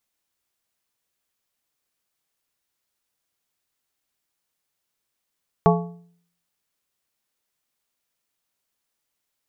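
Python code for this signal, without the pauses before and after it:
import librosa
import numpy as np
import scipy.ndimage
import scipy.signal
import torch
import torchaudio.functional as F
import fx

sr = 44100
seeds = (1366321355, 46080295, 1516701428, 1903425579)

y = fx.strike_metal(sr, length_s=1.55, level_db=-13, body='plate', hz=172.0, decay_s=0.61, tilt_db=1.5, modes=5)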